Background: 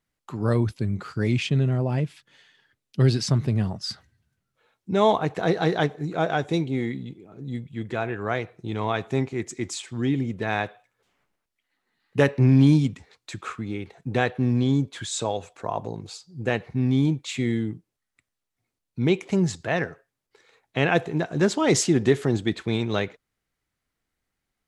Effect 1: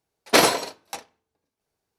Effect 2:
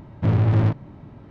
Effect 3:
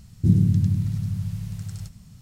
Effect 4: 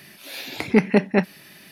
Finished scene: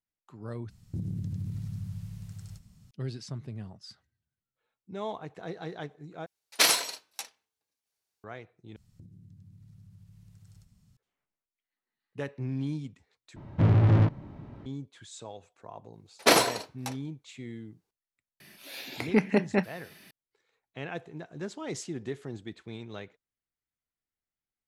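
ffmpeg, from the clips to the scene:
-filter_complex "[3:a]asplit=2[s0][s1];[1:a]asplit=2[s2][s3];[0:a]volume=0.15[s4];[s0]acompressor=threshold=0.1:ratio=6:attack=3.2:release=140:knee=1:detection=peak[s5];[s2]tiltshelf=f=1200:g=-9[s6];[s1]acompressor=threshold=0.02:ratio=8:attack=8.8:release=281:knee=1:detection=peak[s7];[s4]asplit=5[s8][s9][s10][s11][s12];[s8]atrim=end=0.704[s13];[s5]atrim=end=2.21,asetpts=PTS-STARTPTS,volume=0.316[s14];[s9]atrim=start=2.906:end=6.264[s15];[s6]atrim=end=1.98,asetpts=PTS-STARTPTS,volume=0.335[s16];[s10]atrim=start=8.236:end=8.764[s17];[s7]atrim=end=2.21,asetpts=PTS-STARTPTS,volume=0.158[s18];[s11]atrim=start=10.966:end=13.364[s19];[2:a]atrim=end=1.3,asetpts=PTS-STARTPTS,volume=0.75[s20];[s12]atrim=start=14.656[s21];[s3]atrim=end=1.98,asetpts=PTS-STARTPTS,volume=0.631,afade=t=in:d=0.004:c=hsin,afade=t=out:st=1.976:d=0.004:c=hsin,adelay=15930[s22];[4:a]atrim=end=1.71,asetpts=PTS-STARTPTS,volume=0.447,afade=t=in:d=0.004:c=hsin,afade=t=out:st=1.706:d=0.004:c=hsin,adelay=18400[s23];[s13][s14]acrossfade=d=0.004:c1=hsin:c2=hsin[s24];[s24][s15]acrossfade=d=0.004:c1=hsin:c2=hsin[s25];[s25][s16]acrossfade=d=0.004:c1=hsin:c2=hsin[s26];[s26][s17]acrossfade=d=0.004:c1=hsin:c2=hsin[s27];[s27][s18]acrossfade=d=0.004:c1=hsin:c2=hsin[s28];[s28][s19]acrossfade=d=0.004:c1=hsin:c2=hsin[s29];[s29][s20]acrossfade=d=0.004:c1=hsin:c2=hsin[s30];[s30][s21]acrossfade=d=0.004:c1=hsin:c2=hsin[s31];[s31][s22][s23]amix=inputs=3:normalize=0"

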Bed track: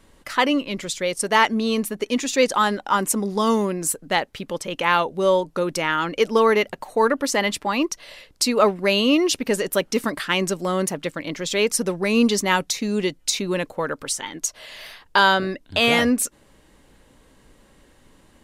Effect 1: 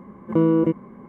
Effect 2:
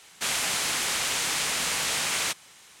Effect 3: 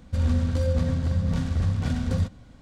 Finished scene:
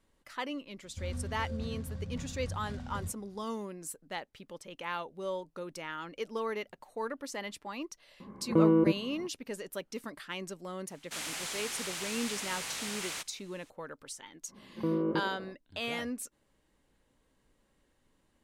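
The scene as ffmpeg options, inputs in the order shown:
-filter_complex "[1:a]asplit=2[s0][s1];[0:a]volume=0.126[s2];[2:a]acontrast=73[s3];[s1]asplit=8[s4][s5][s6][s7][s8][s9][s10][s11];[s5]adelay=81,afreqshift=50,volume=0.316[s12];[s6]adelay=162,afreqshift=100,volume=0.18[s13];[s7]adelay=243,afreqshift=150,volume=0.102[s14];[s8]adelay=324,afreqshift=200,volume=0.0589[s15];[s9]adelay=405,afreqshift=250,volume=0.0335[s16];[s10]adelay=486,afreqshift=300,volume=0.0191[s17];[s11]adelay=567,afreqshift=350,volume=0.0108[s18];[s4][s12][s13][s14][s15][s16][s17][s18]amix=inputs=8:normalize=0[s19];[3:a]atrim=end=2.61,asetpts=PTS-STARTPTS,volume=0.168,afade=t=in:d=0.004:c=hsin,afade=t=out:st=2.606:d=0.004:c=hsin,adelay=840[s20];[s0]atrim=end=1.08,asetpts=PTS-STARTPTS,volume=0.531,afade=t=in:d=0.004:c=hsin,afade=t=out:st=1.076:d=0.004:c=hsin,adelay=8200[s21];[s3]atrim=end=2.8,asetpts=PTS-STARTPTS,volume=0.126,afade=t=in:d=0.004:c=hsin,afade=t=out:st=2.796:d=0.004:c=hsin,adelay=480690S[s22];[s19]atrim=end=1.08,asetpts=PTS-STARTPTS,volume=0.224,afade=t=in:d=0.05,afade=t=out:st=1.03:d=0.05,adelay=14480[s23];[s2][s20][s21][s22][s23]amix=inputs=5:normalize=0"

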